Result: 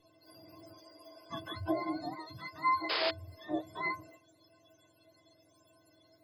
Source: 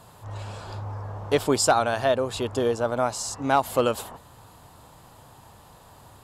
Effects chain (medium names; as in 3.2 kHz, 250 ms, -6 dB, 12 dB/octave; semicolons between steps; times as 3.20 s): spectrum inverted on a logarithmic axis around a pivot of 700 Hz; inharmonic resonator 310 Hz, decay 0.23 s, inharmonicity 0.03; painted sound noise, 2.89–3.11 s, 380–5200 Hz -36 dBFS; trim +3 dB